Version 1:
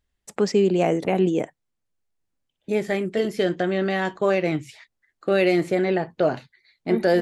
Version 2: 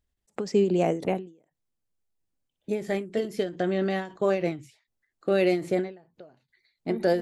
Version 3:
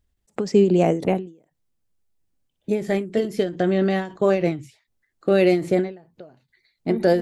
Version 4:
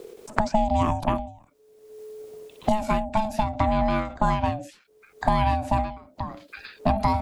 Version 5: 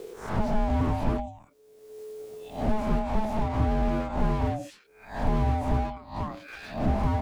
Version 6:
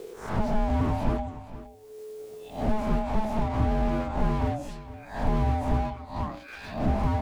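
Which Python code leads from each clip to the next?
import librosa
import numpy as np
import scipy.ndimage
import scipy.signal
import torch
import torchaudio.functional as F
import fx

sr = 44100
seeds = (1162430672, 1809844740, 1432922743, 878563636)

y1 = fx.peak_eq(x, sr, hz=1900.0, db=-4.5, octaves=2.3)
y1 = fx.end_taper(y1, sr, db_per_s=140.0)
y1 = y1 * 10.0 ** (-2.0 / 20.0)
y2 = fx.low_shelf(y1, sr, hz=280.0, db=5.0)
y2 = y2 * 10.0 ** (4.0 / 20.0)
y3 = y2 * np.sin(2.0 * np.pi * 430.0 * np.arange(len(y2)) / sr)
y3 = fx.band_squash(y3, sr, depth_pct=100)
y4 = fx.spec_swells(y3, sr, rise_s=0.37)
y4 = fx.slew_limit(y4, sr, full_power_hz=24.0)
y5 = y4 + 10.0 ** (-15.0 / 20.0) * np.pad(y4, (int(466 * sr / 1000.0), 0))[:len(y4)]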